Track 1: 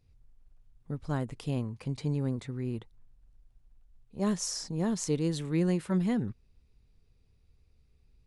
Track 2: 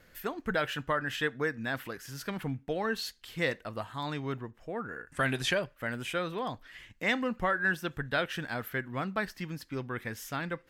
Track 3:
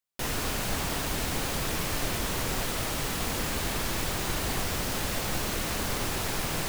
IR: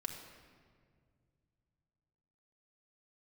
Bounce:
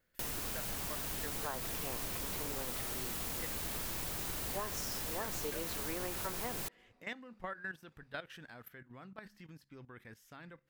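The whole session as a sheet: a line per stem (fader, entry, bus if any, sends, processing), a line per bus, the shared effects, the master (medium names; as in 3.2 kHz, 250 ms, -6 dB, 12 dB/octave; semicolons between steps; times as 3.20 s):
-6.0 dB, 0.35 s, send -20.5 dB, high-pass 460 Hz 12 dB/octave; peaking EQ 1.1 kHz +14 dB 2.9 oct
-9.5 dB, 0.00 s, no send, de-hum 68.97 Hz, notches 3; level held to a coarse grid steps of 14 dB
-6.5 dB, 0.00 s, no send, treble shelf 9.3 kHz +11.5 dB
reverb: on, RT60 2.0 s, pre-delay 4 ms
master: compression 3:1, threshold -38 dBFS, peak gain reduction 10 dB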